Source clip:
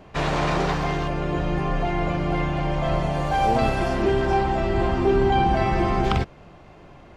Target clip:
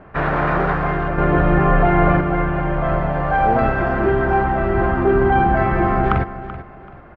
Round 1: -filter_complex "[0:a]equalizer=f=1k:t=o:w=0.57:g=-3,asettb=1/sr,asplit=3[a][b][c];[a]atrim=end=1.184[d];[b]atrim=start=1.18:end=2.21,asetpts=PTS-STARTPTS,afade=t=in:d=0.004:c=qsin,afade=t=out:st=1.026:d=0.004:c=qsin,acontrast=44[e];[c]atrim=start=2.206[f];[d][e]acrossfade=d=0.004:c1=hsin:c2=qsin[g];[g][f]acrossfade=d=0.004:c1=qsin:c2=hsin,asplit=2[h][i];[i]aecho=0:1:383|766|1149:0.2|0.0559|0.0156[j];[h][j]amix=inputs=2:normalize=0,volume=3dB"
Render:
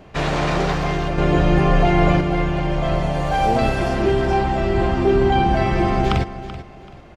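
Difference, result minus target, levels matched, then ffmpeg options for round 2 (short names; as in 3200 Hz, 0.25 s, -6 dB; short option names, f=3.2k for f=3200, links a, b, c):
2000 Hz band -2.5 dB
-filter_complex "[0:a]lowpass=f=1.5k:t=q:w=2.3,equalizer=f=1k:t=o:w=0.57:g=-3,asettb=1/sr,asplit=3[a][b][c];[a]atrim=end=1.184[d];[b]atrim=start=1.18:end=2.21,asetpts=PTS-STARTPTS,afade=t=in:d=0.004:c=qsin,afade=t=out:st=1.026:d=0.004:c=qsin,acontrast=44[e];[c]atrim=start=2.206[f];[d][e]acrossfade=d=0.004:c1=hsin:c2=qsin[g];[g][f]acrossfade=d=0.004:c1=qsin:c2=hsin,asplit=2[h][i];[i]aecho=0:1:383|766|1149:0.2|0.0559|0.0156[j];[h][j]amix=inputs=2:normalize=0,volume=3dB"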